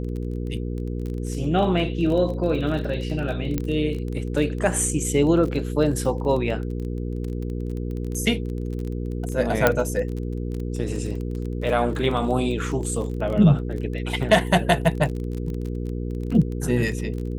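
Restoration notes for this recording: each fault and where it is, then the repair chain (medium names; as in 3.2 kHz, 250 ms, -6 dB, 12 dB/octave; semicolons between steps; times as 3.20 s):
crackle 23 per s -29 dBFS
hum 60 Hz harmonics 8 -28 dBFS
3.58 s: pop -11 dBFS
9.67 s: pop -3 dBFS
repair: de-click; de-hum 60 Hz, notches 8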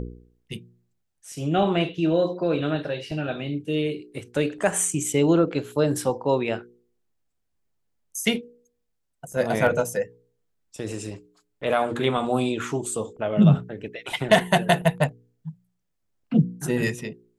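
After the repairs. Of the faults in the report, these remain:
9.67 s: pop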